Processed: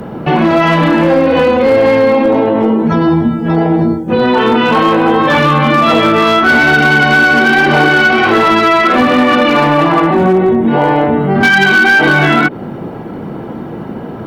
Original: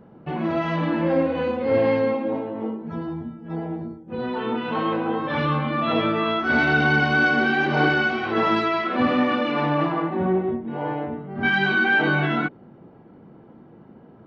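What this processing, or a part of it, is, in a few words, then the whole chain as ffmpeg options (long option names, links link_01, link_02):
mastering chain: -filter_complex "[0:a]equalizer=frequency=170:width_type=o:width=2.4:gain=-2,acrossover=split=120|3500[link_01][link_02][link_03];[link_01]acompressor=threshold=-49dB:ratio=4[link_04];[link_02]acompressor=threshold=-21dB:ratio=4[link_05];[link_03]acompressor=threshold=-54dB:ratio=4[link_06];[link_04][link_05][link_06]amix=inputs=3:normalize=0,acompressor=threshold=-27dB:ratio=2,asoftclip=type=tanh:threshold=-19dB,asoftclip=type=hard:threshold=-23.5dB,alimiter=level_in=28dB:limit=-1dB:release=50:level=0:latency=1,aemphasis=mode=production:type=cd,volume=-2.5dB"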